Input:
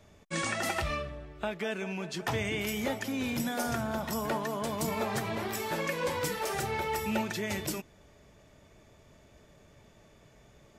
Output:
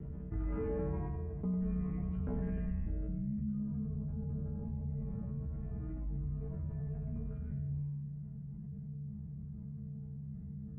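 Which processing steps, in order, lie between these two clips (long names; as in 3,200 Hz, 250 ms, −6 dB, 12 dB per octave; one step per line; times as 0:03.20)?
mains-hum notches 60/120/180/240/300 Hz
ring modulation 110 Hz
low-pass filter sweep 470 Hz → 160 Hz, 0:02.58–0:03.21
amplitude modulation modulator 59 Hz, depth 35%
resonators tuned to a chord C3 fifth, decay 0.63 s
feedback echo with a high-pass in the loop 98 ms, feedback 33%, high-pass 320 Hz, level −4.5 dB
single-sideband voice off tune −340 Hz 160–3,300 Hz
envelope flattener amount 70%
level +16.5 dB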